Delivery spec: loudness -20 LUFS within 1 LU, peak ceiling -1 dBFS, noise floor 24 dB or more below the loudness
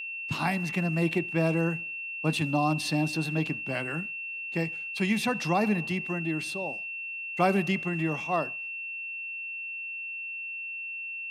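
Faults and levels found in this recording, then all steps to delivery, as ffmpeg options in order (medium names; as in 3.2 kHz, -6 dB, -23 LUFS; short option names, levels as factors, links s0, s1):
steady tone 2.7 kHz; tone level -34 dBFS; loudness -29.5 LUFS; peak level -11.0 dBFS; loudness target -20.0 LUFS
-> -af "bandreject=f=2700:w=30"
-af "volume=2.99"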